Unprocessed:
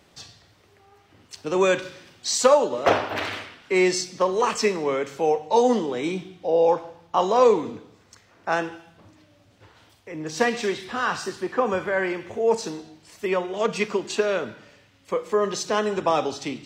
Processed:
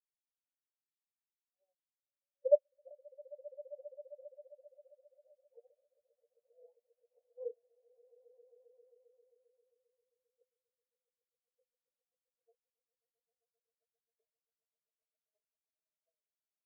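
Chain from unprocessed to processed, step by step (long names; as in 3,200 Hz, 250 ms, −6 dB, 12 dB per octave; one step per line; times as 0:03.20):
spectral magnitudes quantised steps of 15 dB
high-frequency loss of the air 340 metres
harmonic generator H 3 −12 dB, 5 −29 dB, 7 −20 dB, 8 −24 dB, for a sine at −6.5 dBFS
resonant band-pass 590 Hz, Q 2.7
echo that builds up and dies away 133 ms, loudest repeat 8, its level −6.5 dB
every bin expanded away from the loudest bin 4 to 1
level −3.5 dB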